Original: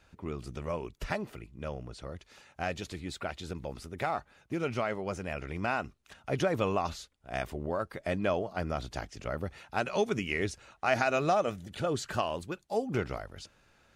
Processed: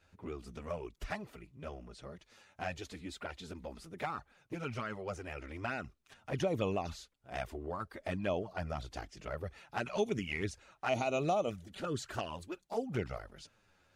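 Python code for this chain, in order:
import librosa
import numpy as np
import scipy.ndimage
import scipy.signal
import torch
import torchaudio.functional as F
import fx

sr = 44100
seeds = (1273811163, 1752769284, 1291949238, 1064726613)

y = fx.env_flanger(x, sr, rest_ms=11.9, full_db=-24.5)
y = y * librosa.db_to_amplitude(-2.5)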